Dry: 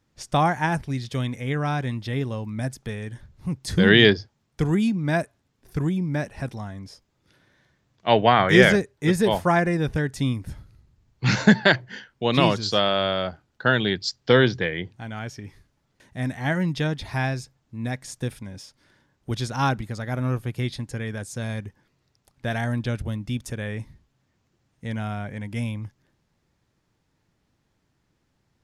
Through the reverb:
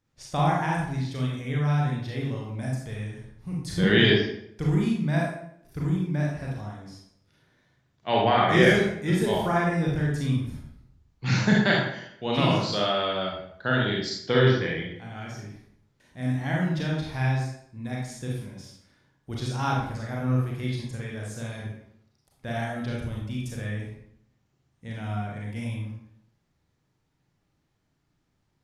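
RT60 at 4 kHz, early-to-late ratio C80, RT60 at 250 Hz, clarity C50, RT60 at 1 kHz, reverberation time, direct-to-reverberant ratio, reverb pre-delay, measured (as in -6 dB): 0.55 s, 5.0 dB, 0.75 s, 1.0 dB, 0.65 s, 0.70 s, -3.5 dB, 30 ms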